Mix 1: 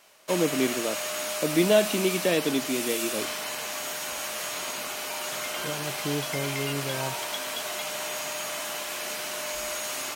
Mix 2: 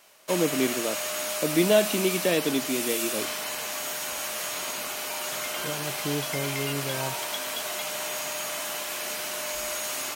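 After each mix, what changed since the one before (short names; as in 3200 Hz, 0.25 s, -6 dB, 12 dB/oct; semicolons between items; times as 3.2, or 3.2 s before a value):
master: add high shelf 11000 Hz +5 dB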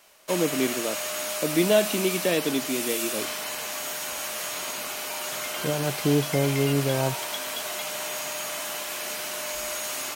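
second voice +8.5 dB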